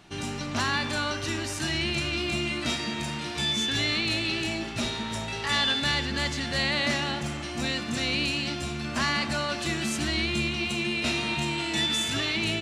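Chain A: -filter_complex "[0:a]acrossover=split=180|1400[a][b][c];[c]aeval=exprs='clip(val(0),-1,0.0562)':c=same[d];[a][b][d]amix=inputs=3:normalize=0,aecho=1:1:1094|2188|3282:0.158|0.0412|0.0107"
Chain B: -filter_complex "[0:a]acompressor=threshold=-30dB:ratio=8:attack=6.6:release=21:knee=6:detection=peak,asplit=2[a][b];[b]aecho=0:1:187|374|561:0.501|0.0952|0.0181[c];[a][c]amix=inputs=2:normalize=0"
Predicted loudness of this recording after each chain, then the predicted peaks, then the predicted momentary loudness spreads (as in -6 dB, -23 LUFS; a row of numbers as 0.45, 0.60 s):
-27.0, -29.5 LUFS; -12.5, -16.5 dBFS; 6, 4 LU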